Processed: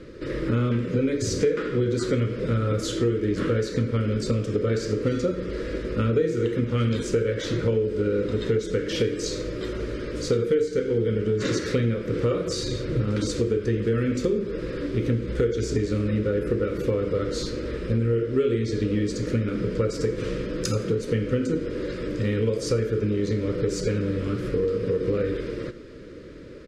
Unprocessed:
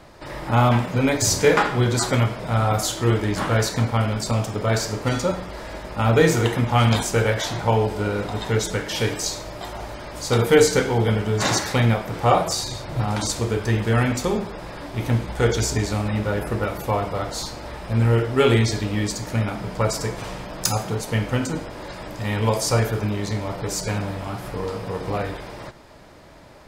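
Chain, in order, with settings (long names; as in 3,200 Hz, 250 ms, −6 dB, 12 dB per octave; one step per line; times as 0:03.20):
drawn EQ curve 160 Hz 0 dB, 350 Hz +7 dB, 500 Hz +8 dB, 760 Hz −30 dB, 1,300 Hz −4 dB
downward compressor 6 to 1, threshold −24 dBFS, peak gain reduction 19.5 dB
high-frequency loss of the air 70 metres
repeating echo 84 ms, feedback 36%, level −21.5 dB
level +3.5 dB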